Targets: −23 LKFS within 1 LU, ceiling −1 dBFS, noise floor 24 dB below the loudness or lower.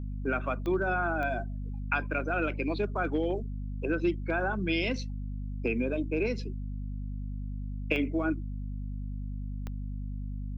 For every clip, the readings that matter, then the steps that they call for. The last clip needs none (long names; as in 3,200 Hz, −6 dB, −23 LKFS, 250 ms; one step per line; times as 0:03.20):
number of clicks 4; mains hum 50 Hz; hum harmonics up to 250 Hz; level of the hum −33 dBFS; integrated loudness −32.5 LKFS; sample peak −14.5 dBFS; target loudness −23.0 LKFS
→ click removal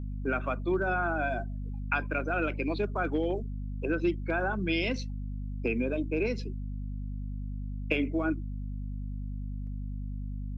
number of clicks 0; mains hum 50 Hz; hum harmonics up to 250 Hz; level of the hum −33 dBFS
→ mains-hum notches 50/100/150/200/250 Hz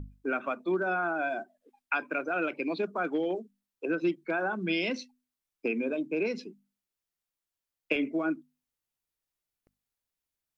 mains hum none found; integrated loudness −31.5 LKFS; sample peak −15.0 dBFS; target loudness −23.0 LKFS
→ level +8.5 dB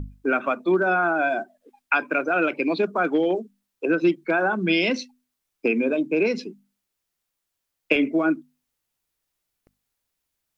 integrated loudness −23.0 LKFS; sample peak −6.5 dBFS; background noise floor −81 dBFS